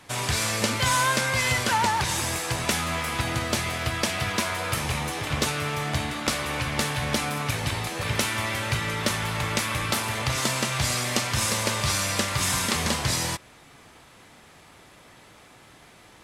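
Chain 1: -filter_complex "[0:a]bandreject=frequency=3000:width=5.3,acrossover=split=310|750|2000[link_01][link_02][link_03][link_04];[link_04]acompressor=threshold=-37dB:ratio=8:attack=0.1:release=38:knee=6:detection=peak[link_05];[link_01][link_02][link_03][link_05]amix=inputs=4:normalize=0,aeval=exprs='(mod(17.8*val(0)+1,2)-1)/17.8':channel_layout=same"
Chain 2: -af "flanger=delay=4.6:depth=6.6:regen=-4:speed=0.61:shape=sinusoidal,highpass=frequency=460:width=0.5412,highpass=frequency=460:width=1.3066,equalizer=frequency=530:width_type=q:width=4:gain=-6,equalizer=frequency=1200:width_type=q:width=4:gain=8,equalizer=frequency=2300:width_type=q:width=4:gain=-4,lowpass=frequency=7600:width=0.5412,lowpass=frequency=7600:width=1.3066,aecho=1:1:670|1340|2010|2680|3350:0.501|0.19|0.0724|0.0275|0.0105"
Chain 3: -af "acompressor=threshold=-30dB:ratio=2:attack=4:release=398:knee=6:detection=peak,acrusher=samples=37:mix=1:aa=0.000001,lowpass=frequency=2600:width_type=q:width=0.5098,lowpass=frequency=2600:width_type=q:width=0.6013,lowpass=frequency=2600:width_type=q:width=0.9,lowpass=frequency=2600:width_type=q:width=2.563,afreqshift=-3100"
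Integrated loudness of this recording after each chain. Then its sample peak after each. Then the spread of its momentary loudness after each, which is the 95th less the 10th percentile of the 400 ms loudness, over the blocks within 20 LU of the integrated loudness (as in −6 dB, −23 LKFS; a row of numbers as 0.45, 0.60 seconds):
−29.0, −28.0, −29.0 LKFS; −25.0, −12.5, −13.0 dBFS; 2, 6, 21 LU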